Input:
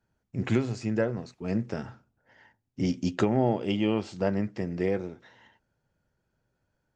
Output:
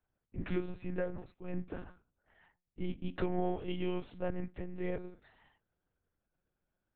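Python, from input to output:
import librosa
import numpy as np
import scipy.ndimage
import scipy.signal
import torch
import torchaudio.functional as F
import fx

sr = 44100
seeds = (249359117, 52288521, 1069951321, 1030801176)

y = fx.lpc_monotone(x, sr, seeds[0], pitch_hz=180.0, order=10)
y = y * librosa.db_to_amplitude(-8.5)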